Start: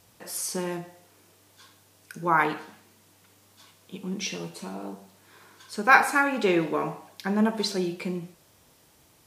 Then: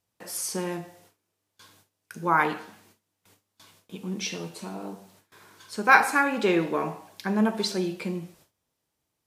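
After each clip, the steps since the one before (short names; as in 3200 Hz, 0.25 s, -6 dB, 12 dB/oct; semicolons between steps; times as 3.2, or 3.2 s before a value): gate with hold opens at -45 dBFS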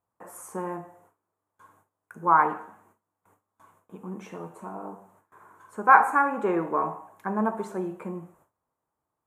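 EQ curve 200 Hz 0 dB, 560 Hz +4 dB, 1100 Hz +11 dB, 4900 Hz -28 dB, 7000 Hz -7 dB; gain -5 dB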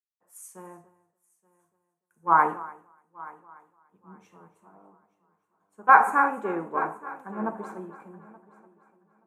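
multi-head echo 0.292 s, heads first and third, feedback 59%, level -12.5 dB; three-band expander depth 100%; gain -8.5 dB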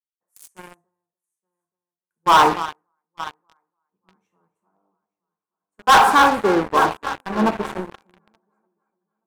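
sample leveller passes 5; gain -5.5 dB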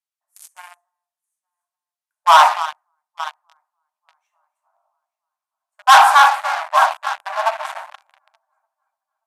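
brick-wall FIR band-pass 580–14000 Hz; gain +3.5 dB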